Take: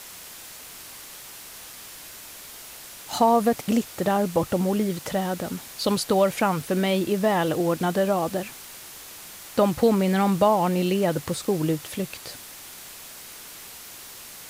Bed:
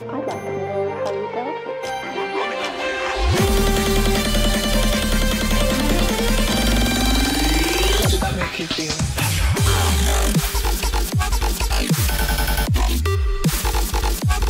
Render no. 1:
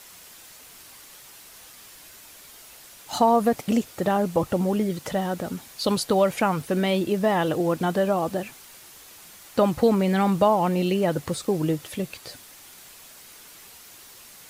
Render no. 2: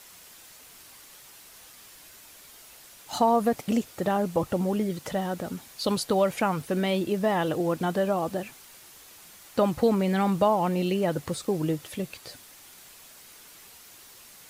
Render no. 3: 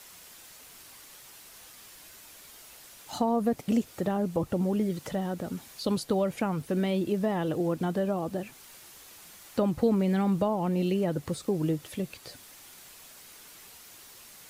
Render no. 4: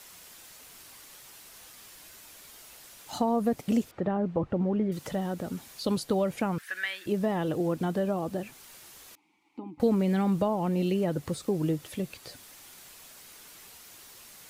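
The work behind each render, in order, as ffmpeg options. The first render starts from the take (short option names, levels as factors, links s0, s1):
-af "afftdn=nr=6:nf=-42"
-af "volume=0.708"
-filter_complex "[0:a]acrossover=split=450[s0][s1];[s1]acompressor=threshold=0.00501:ratio=1.5[s2];[s0][s2]amix=inputs=2:normalize=0"
-filter_complex "[0:a]asettb=1/sr,asplit=3[s0][s1][s2];[s0]atrim=end=3.914[s3];[s1]atrim=start=3.91:end=4.92,asetpts=PTS-STARTPTS,afade=t=in:d=0.004:c=qsin,afade=t=out:st=1.006:d=0.004:c=qsin,lowpass=2100[s4];[s2]atrim=start=4.916[s5];[s3][s4]acrossfade=d=0.004:c1=hsin:c2=qsin[s6];[s6][s5]acrossfade=d=0.004:c1=qsin:c2=hsin,asettb=1/sr,asplit=3[s7][s8][s9];[s7]atrim=end=6.584[s10];[s8]atrim=start=6.58:end=7.06,asetpts=PTS-STARTPTS,afade=t=in:d=0.004:c=qsin,afade=t=out:st=0.476:d=0.004:c=qsin,highpass=f=1700:t=q:w=8[s11];[s9]atrim=start=7.056[s12];[s10][s11]acrossfade=d=0.004:c1=hsin:c2=qsin[s13];[s13][s12]acrossfade=d=0.004:c1=qsin:c2=hsin,asettb=1/sr,asplit=3[s14][s15][s16];[s14]atrim=end=9.154[s17];[s15]atrim=start=9.15:end=9.8,asetpts=PTS-STARTPTS,afade=t=in:d=0.004:c=qsin,afade=t=out:st=0.646:d=0.004:c=qsin,asplit=3[s18][s19][s20];[s18]bandpass=f=300:t=q:w=8,volume=1[s21];[s19]bandpass=f=870:t=q:w=8,volume=0.501[s22];[s20]bandpass=f=2240:t=q:w=8,volume=0.355[s23];[s21][s22][s23]amix=inputs=3:normalize=0[s24];[s16]atrim=start=9.796[s25];[s17][s24]acrossfade=d=0.004:c1=hsin:c2=qsin[s26];[s26][s25]acrossfade=d=0.004:c1=qsin:c2=hsin"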